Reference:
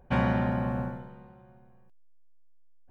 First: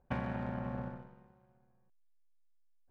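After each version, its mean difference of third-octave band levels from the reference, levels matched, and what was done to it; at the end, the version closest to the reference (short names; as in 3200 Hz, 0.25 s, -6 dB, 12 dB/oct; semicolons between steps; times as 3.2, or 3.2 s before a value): 1.5 dB: LPF 2600 Hz; compressor 5:1, threshold -30 dBFS, peak gain reduction 9 dB; power-law curve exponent 1.4; gain -1 dB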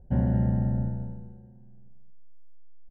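7.0 dB: running mean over 37 samples; low shelf 160 Hz +11.5 dB; feedback echo 0.22 s, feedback 18%, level -7.5 dB; gain -3 dB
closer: first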